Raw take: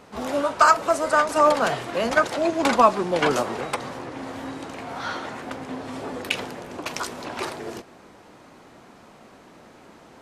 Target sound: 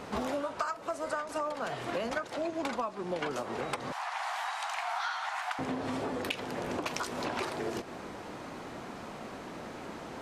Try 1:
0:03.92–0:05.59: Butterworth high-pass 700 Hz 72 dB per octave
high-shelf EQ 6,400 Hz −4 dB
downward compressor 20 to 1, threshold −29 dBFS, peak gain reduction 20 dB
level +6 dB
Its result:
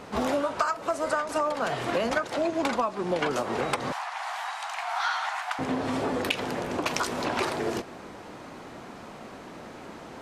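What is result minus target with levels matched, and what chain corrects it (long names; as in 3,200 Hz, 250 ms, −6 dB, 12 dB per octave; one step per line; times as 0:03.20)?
downward compressor: peak gain reduction −7 dB
0:03.92–0:05.59: Butterworth high-pass 700 Hz 72 dB per octave
high-shelf EQ 6,400 Hz −4 dB
downward compressor 20 to 1, threshold −36.5 dBFS, peak gain reduction 27 dB
level +6 dB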